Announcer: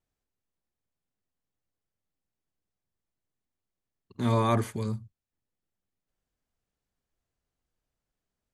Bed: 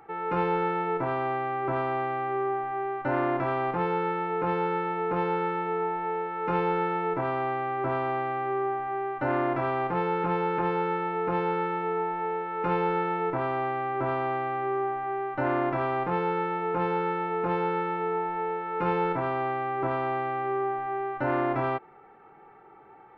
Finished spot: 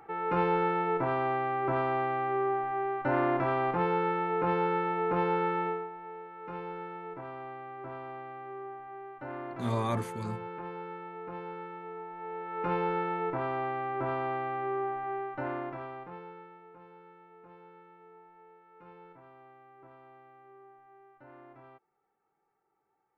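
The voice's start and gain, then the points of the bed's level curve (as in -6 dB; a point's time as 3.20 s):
5.40 s, -6.0 dB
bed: 5.67 s -1 dB
5.90 s -13.5 dB
12.09 s -13.5 dB
12.58 s -4 dB
15.16 s -4 dB
16.82 s -26.5 dB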